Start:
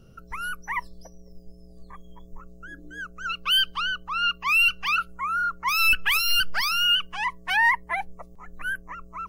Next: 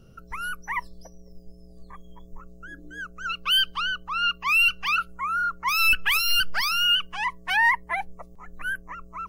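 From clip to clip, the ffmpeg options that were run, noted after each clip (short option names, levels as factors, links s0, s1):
-af anull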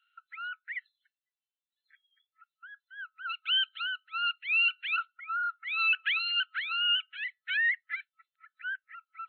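-af "afftfilt=real='re*between(b*sr/4096,1300,4200)':imag='im*between(b*sr/4096,1300,4200)':win_size=4096:overlap=0.75,volume=0.501"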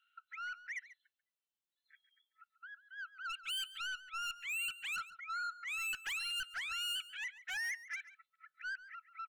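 -filter_complex "[0:a]asoftclip=type=tanh:threshold=0.0188,asplit=2[s0][s1];[s1]adelay=139.9,volume=0.178,highshelf=f=4000:g=-3.15[s2];[s0][s2]amix=inputs=2:normalize=0,volume=0.75"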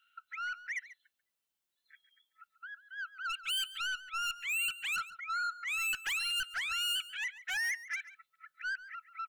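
-af "highshelf=f=11000:g=3,volume=1.78"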